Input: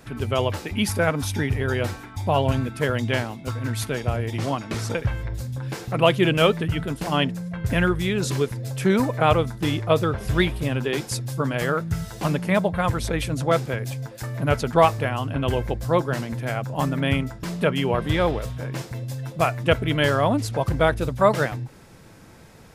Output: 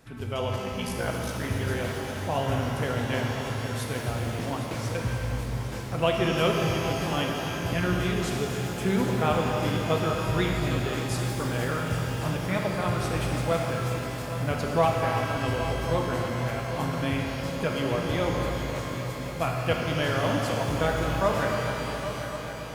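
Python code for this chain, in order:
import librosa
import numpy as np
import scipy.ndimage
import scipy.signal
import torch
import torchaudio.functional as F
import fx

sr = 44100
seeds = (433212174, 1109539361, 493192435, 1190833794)

y = fx.echo_heads(x, sr, ms=270, heads='first and third', feedback_pct=69, wet_db=-13.0)
y = fx.ring_mod(y, sr, carrier_hz=28.0, at=(0.56, 1.42), fade=0.02)
y = fx.rev_shimmer(y, sr, seeds[0], rt60_s=3.2, semitones=12, shimmer_db=-8, drr_db=0.0)
y = F.gain(torch.from_numpy(y), -8.5).numpy()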